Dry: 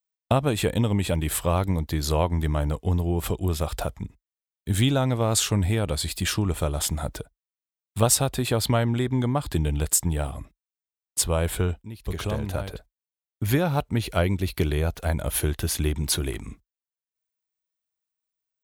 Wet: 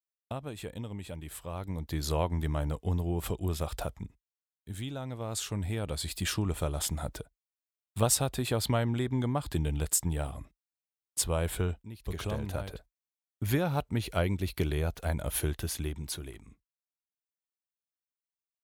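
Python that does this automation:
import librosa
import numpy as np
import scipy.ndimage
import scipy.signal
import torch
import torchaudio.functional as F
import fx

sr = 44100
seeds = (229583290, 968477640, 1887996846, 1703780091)

y = fx.gain(x, sr, db=fx.line((1.49, -16.5), (1.97, -6.5), (3.99, -6.5), (4.82, -17.0), (6.18, -6.0), (15.49, -6.0), (16.43, -16.0)))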